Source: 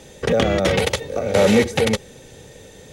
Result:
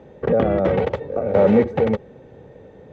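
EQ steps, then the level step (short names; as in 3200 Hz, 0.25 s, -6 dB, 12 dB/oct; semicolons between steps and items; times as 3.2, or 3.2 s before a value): HPF 97 Hz 6 dB/oct; LPF 1100 Hz 12 dB/oct; +1.0 dB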